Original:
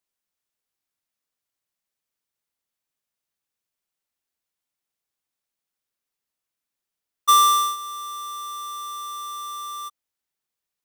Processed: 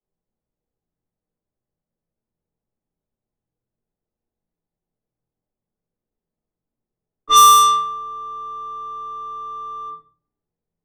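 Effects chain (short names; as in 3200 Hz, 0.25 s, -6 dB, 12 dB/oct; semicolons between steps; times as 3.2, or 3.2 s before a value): shoebox room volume 58 m³, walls mixed, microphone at 2.1 m; low-pass opened by the level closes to 500 Hz, open at -5 dBFS; in parallel at -2 dB: compressor, threshold -18 dBFS, peak gain reduction 13 dB; on the sum: gain -3 dB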